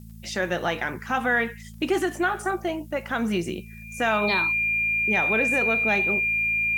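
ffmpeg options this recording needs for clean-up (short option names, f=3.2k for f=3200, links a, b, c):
-af "adeclick=t=4,bandreject=f=55.2:t=h:w=4,bandreject=f=110.4:t=h:w=4,bandreject=f=165.6:t=h:w=4,bandreject=f=220.8:t=h:w=4,bandreject=f=2.4k:w=30,agate=range=-21dB:threshold=-34dB"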